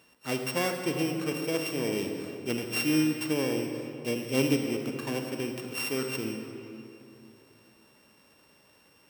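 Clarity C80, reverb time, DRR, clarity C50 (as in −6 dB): 5.0 dB, 2.7 s, 3.5 dB, 4.0 dB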